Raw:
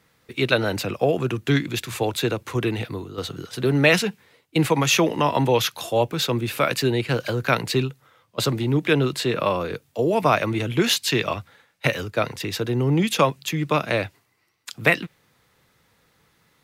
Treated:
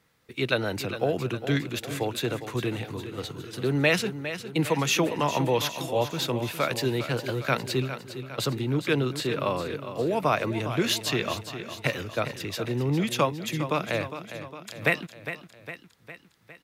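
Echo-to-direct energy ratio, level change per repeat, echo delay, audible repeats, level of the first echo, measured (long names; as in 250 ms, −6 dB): −9.5 dB, −5.0 dB, 407 ms, 4, −11.0 dB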